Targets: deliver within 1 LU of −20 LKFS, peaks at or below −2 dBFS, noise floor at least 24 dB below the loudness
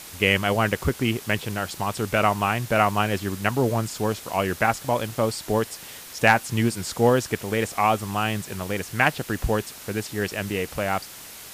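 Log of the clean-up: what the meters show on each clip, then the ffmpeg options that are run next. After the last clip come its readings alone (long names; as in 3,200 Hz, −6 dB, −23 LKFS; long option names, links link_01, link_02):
background noise floor −42 dBFS; target noise floor −48 dBFS; integrated loudness −24.0 LKFS; sample peak −4.5 dBFS; target loudness −20.0 LKFS
→ -af "afftdn=noise_reduction=6:noise_floor=-42"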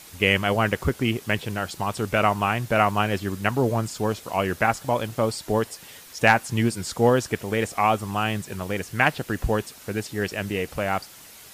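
background noise floor −46 dBFS; target noise floor −48 dBFS
→ -af "afftdn=noise_reduction=6:noise_floor=-46"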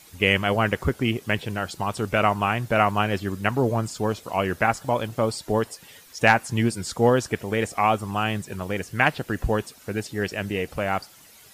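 background noise floor −50 dBFS; integrated loudness −24.5 LKFS; sample peak −4.0 dBFS; target loudness −20.0 LKFS
→ -af "volume=4.5dB,alimiter=limit=-2dB:level=0:latency=1"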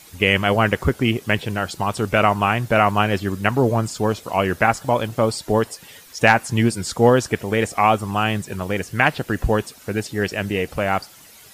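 integrated loudness −20.0 LKFS; sample peak −2.0 dBFS; background noise floor −46 dBFS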